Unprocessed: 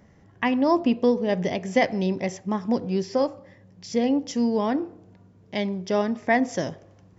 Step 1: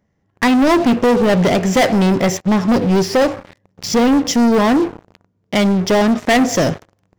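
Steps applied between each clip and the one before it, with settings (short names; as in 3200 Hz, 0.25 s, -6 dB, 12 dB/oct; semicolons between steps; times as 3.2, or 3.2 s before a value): sample leveller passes 5; gain -1.5 dB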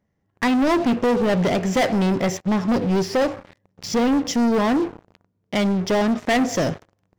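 high shelf 7400 Hz -4 dB; gain -6 dB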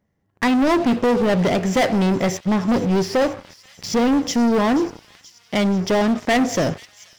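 thin delay 0.481 s, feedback 73%, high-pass 2900 Hz, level -16 dB; gain +1.5 dB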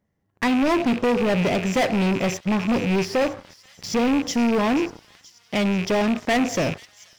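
rattling part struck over -30 dBFS, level -17 dBFS; gain -3 dB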